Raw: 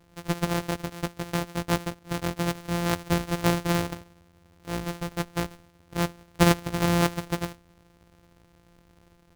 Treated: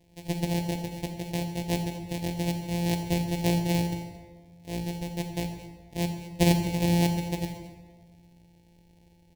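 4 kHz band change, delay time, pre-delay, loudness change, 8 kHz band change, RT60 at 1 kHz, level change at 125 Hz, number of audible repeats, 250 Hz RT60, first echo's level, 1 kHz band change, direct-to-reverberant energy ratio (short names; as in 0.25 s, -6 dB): -2.0 dB, 0.222 s, 28 ms, -1.0 dB, -2.5 dB, 1.4 s, +0.5 dB, 1, 1.7 s, -17.5 dB, -5.5 dB, 5.0 dB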